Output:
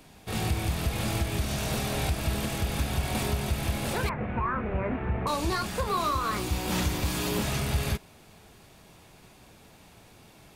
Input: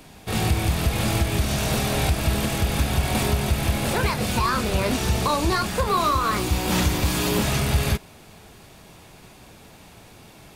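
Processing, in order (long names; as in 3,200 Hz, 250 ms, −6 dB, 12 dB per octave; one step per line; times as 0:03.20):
0:04.09–0:05.27: Butterworth low-pass 2,200 Hz 36 dB per octave
level −6.5 dB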